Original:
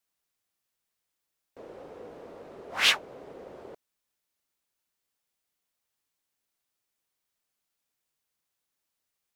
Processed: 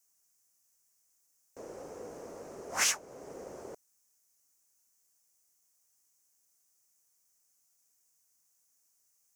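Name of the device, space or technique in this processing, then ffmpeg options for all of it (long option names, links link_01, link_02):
over-bright horn tweeter: -af "highshelf=frequency=4800:width_type=q:width=3:gain=9.5,alimiter=limit=-16.5dB:level=0:latency=1:release=462"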